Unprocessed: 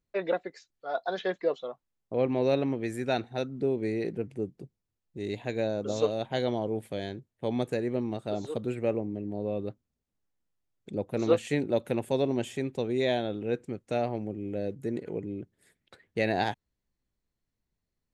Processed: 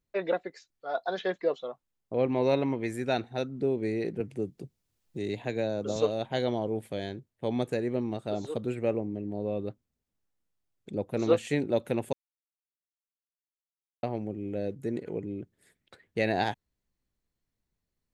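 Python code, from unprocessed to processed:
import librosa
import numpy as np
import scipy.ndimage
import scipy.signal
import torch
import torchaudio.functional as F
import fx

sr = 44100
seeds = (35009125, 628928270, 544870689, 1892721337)

y = fx.small_body(x, sr, hz=(960.0, 2100.0), ring_ms=30, db=10, at=(2.34, 2.93))
y = fx.band_squash(y, sr, depth_pct=40, at=(4.2, 5.96))
y = fx.edit(y, sr, fx.silence(start_s=12.13, length_s=1.9), tone=tone)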